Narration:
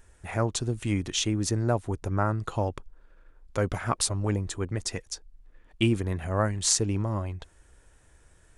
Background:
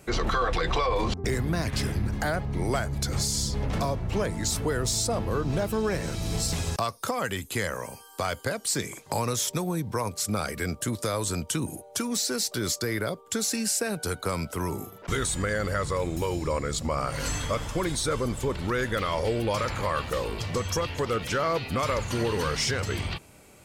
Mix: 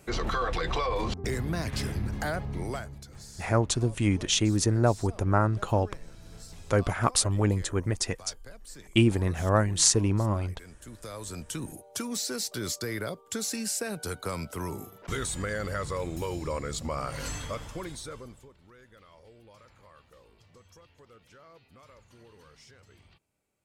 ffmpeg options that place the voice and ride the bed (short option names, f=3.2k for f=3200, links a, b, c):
-filter_complex "[0:a]adelay=3150,volume=2.5dB[a];[1:a]volume=12dB,afade=t=out:st=2.47:d=0.59:silence=0.149624,afade=t=in:st=10.79:d=1.11:silence=0.16788,afade=t=out:st=17.13:d=1.38:silence=0.0668344[b];[a][b]amix=inputs=2:normalize=0"